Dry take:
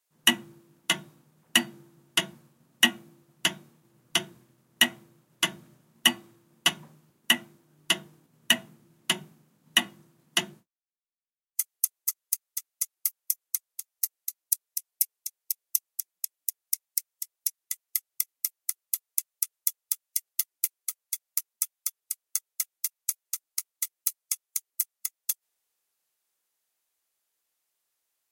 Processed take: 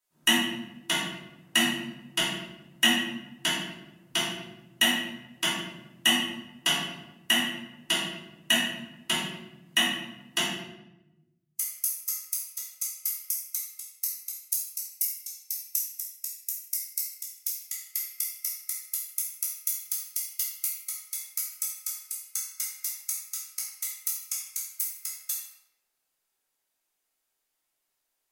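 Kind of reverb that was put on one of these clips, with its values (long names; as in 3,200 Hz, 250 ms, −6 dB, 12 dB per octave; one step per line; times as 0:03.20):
rectangular room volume 360 cubic metres, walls mixed, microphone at 2.8 metres
level −6.5 dB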